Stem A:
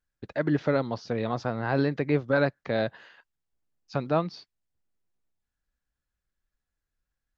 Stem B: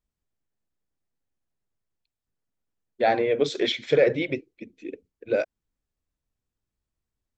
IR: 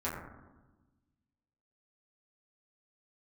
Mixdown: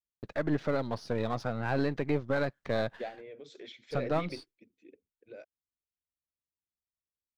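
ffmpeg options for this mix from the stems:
-filter_complex "[0:a]aeval=exprs='if(lt(val(0),0),0.447*val(0),val(0))':channel_layout=same,agate=range=-33dB:threshold=-53dB:ratio=3:detection=peak,volume=0dB,asplit=2[link_01][link_02];[1:a]highpass=50,alimiter=limit=-19dB:level=0:latency=1:release=119,volume=-9.5dB[link_03];[link_02]apad=whole_len=325060[link_04];[link_03][link_04]sidechaingate=range=-10dB:threshold=-51dB:ratio=16:detection=peak[link_05];[link_01][link_05]amix=inputs=2:normalize=0,alimiter=limit=-18.5dB:level=0:latency=1:release=97"

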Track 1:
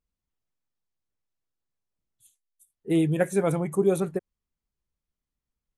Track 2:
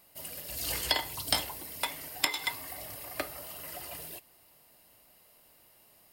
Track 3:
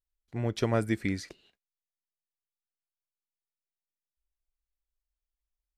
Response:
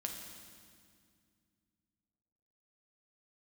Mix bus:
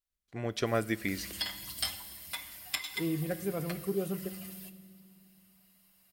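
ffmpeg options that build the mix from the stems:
-filter_complex "[0:a]equalizer=frequency=85:width_type=o:width=3:gain=4,adelay=100,volume=-14.5dB,asplit=2[link_01][link_02];[link_02]volume=-7.5dB[link_03];[1:a]equalizer=frequency=410:width=0.83:gain=-14.5,asplit=2[link_04][link_05];[link_05]adelay=6.8,afreqshift=2[link_06];[link_04][link_06]amix=inputs=2:normalize=1,adelay=500,volume=-4.5dB,asplit=2[link_07][link_08];[link_08]volume=-5dB[link_09];[2:a]lowshelf=frequency=350:gain=-9,volume=0dB,asplit=3[link_10][link_11][link_12];[link_11]volume=-14dB[link_13];[link_12]apad=whole_len=292454[link_14];[link_07][link_14]sidechaincompress=threshold=-47dB:ratio=8:attack=16:release=283[link_15];[3:a]atrim=start_sample=2205[link_16];[link_03][link_09][link_13]amix=inputs=3:normalize=0[link_17];[link_17][link_16]afir=irnorm=-1:irlink=0[link_18];[link_01][link_15][link_10][link_18]amix=inputs=4:normalize=0,asuperstop=centerf=890:order=4:qfactor=8"

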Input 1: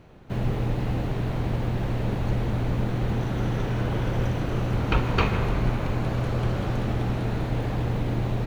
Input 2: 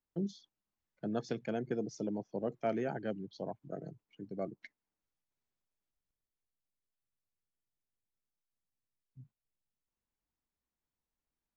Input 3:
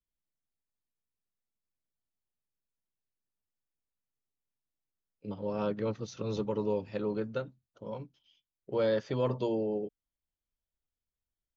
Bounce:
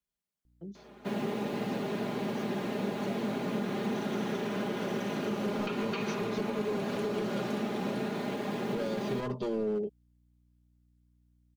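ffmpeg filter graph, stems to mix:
ffmpeg -i stem1.wav -i stem2.wav -i stem3.wav -filter_complex "[0:a]highpass=frequency=210:width=0.5412,highpass=frequency=210:width=1.3066,adelay=750,volume=-1dB[link_01];[1:a]aeval=exprs='val(0)+0.00141*(sin(2*PI*60*n/s)+sin(2*PI*2*60*n/s)/2+sin(2*PI*3*60*n/s)/3+sin(2*PI*4*60*n/s)/4+sin(2*PI*5*60*n/s)/5)':channel_layout=same,adelay=450,volume=-8.5dB[link_02];[2:a]highpass=60,asoftclip=type=hard:threshold=-28dB,volume=0.5dB[link_03];[link_01][link_03]amix=inputs=2:normalize=0,aecho=1:1:4.9:0.64,alimiter=limit=-21.5dB:level=0:latency=1:release=125,volume=0dB[link_04];[link_02][link_04]amix=inputs=2:normalize=0,acrossover=split=420|3000[link_05][link_06][link_07];[link_06]acompressor=threshold=-38dB:ratio=3[link_08];[link_05][link_08][link_07]amix=inputs=3:normalize=0" out.wav

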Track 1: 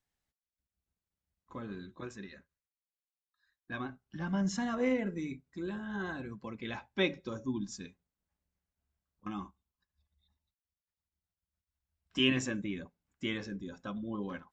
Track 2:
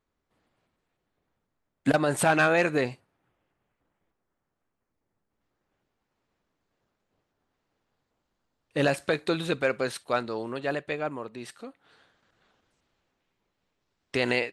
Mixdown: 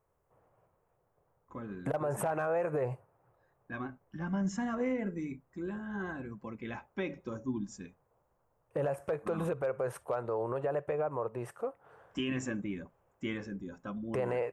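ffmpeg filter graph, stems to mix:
ffmpeg -i stem1.wav -i stem2.wav -filter_complex "[0:a]volume=0dB[link_01];[1:a]equalizer=frequency=125:width_type=o:width=1:gain=8,equalizer=frequency=250:width_type=o:width=1:gain=-11,equalizer=frequency=500:width_type=o:width=1:gain=9,equalizer=frequency=1000:width_type=o:width=1:gain=6,equalizer=frequency=2000:width_type=o:width=1:gain=-5,equalizer=frequency=4000:width_type=o:width=1:gain=-9,equalizer=frequency=8000:width_type=o:width=1:gain=-6,acompressor=threshold=-26dB:ratio=2.5,volume=1.5dB[link_02];[link_01][link_02]amix=inputs=2:normalize=0,equalizer=frequency=4100:width=1.6:gain=-14.5,volume=16dB,asoftclip=hard,volume=-16dB,alimiter=level_in=0.5dB:limit=-24dB:level=0:latency=1:release=85,volume=-0.5dB" out.wav

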